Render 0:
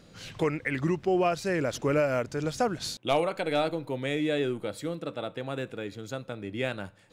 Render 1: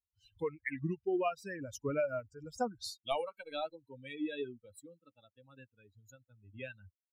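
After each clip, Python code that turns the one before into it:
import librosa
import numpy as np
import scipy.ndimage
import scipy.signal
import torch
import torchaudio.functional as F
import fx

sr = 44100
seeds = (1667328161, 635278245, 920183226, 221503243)

y = fx.bin_expand(x, sr, power=3.0)
y = y * 10.0 ** (-3.5 / 20.0)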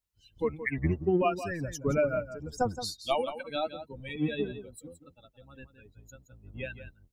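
y = fx.octave_divider(x, sr, octaves=1, level_db=-1.0)
y = y + 10.0 ** (-11.5 / 20.0) * np.pad(y, (int(171 * sr / 1000.0), 0))[:len(y)]
y = y * 10.0 ** (6.0 / 20.0)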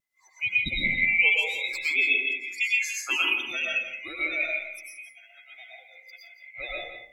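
y = fx.band_swap(x, sr, width_hz=2000)
y = fx.rev_freeverb(y, sr, rt60_s=0.7, hf_ratio=0.3, predelay_ms=75, drr_db=-3.5)
y = fx.vibrato(y, sr, rate_hz=0.69, depth_cents=17.0)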